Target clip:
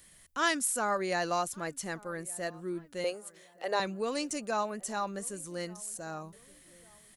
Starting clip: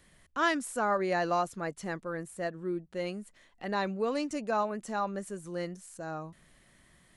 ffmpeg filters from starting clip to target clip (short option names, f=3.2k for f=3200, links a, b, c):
-filter_complex "[0:a]crystalizer=i=3.5:c=0,asettb=1/sr,asplit=3[a][b][c];[a]atrim=end=3.044[d];[b]atrim=start=3.04:end=3.8,asetpts=PTS-STARTPTS,afade=t=in:d=0.004:c=qsin,afade=t=out:st=0.756:d=0.004:c=qsin,highpass=f=500:t=q:w=3.8[e];[c]atrim=start=3.796[f];[d][e]acrossfade=d=0.004:c1=hsin:c2=qsin[g];[g][f]acrossfade=d=0.004:c1=qsin:c2=hsin,asplit=2[h][i];[i]adelay=1167,lowpass=f=1.7k:p=1,volume=-23dB,asplit=2[j][k];[k]adelay=1167,lowpass=f=1.7k:p=1,volume=0.46,asplit=2[l][m];[m]adelay=1167,lowpass=f=1.7k:p=1,volume=0.46[n];[h][j][l][n]amix=inputs=4:normalize=0,volume=-3dB"